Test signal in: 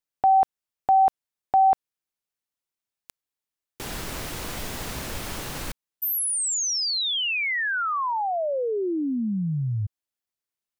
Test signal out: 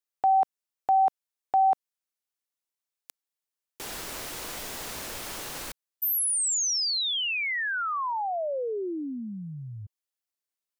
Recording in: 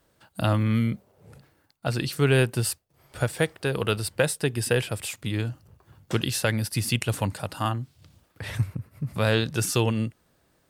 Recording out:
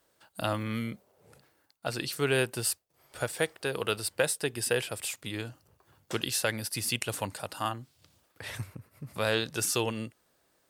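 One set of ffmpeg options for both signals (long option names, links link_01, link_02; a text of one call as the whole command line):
ffmpeg -i in.wav -af "bass=frequency=250:gain=-10,treble=frequency=4000:gain=3,volume=-3.5dB" out.wav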